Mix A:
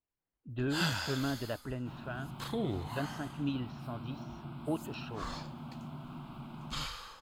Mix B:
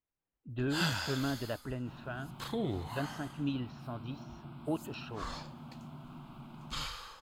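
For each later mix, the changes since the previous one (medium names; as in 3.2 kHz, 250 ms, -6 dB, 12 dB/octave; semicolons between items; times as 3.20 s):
second sound -3.5 dB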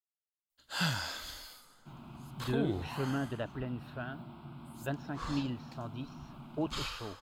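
speech: entry +1.90 s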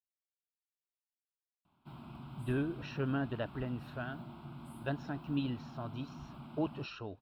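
first sound: muted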